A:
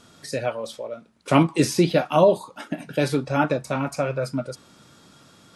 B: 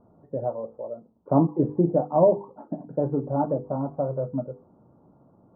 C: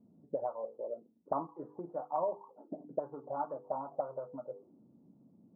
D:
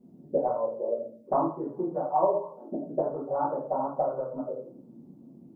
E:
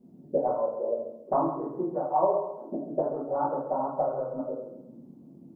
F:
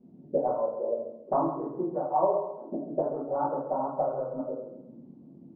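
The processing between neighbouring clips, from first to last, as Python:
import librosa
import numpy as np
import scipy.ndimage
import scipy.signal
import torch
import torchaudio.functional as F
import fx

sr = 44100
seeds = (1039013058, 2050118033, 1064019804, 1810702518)

y1 = scipy.signal.sosfilt(scipy.signal.butter(6, 930.0, 'lowpass', fs=sr, output='sos'), x)
y1 = fx.hum_notches(y1, sr, base_hz=50, count=10)
y1 = y1 * 10.0 ** (-1.5 / 20.0)
y2 = fx.rider(y1, sr, range_db=4, speed_s=2.0)
y2 = fx.auto_wah(y2, sr, base_hz=210.0, top_hz=1200.0, q=2.6, full_db=-20.0, direction='up')
y2 = y2 * 10.0 ** (-4.0 / 20.0)
y3 = fx.room_shoebox(y2, sr, seeds[0], volume_m3=43.0, walls='mixed', distance_m=1.3)
y3 = y3 * 10.0 ** (1.5 / 20.0)
y4 = fx.echo_feedback(y3, sr, ms=135, feedback_pct=33, wet_db=-10.0)
y5 = fx.air_absorb(y4, sr, metres=220.0)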